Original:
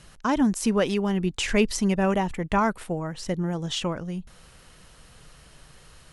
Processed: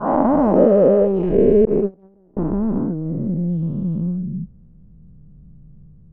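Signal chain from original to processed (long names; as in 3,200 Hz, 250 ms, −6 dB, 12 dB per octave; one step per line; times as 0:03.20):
every bin's largest magnitude spread in time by 480 ms
low-pass filter sweep 690 Hz → 190 Hz, 0:00.18–0:03.86
0:01.65–0:02.37: noise gate −10 dBFS, range −34 dB
level −1.5 dB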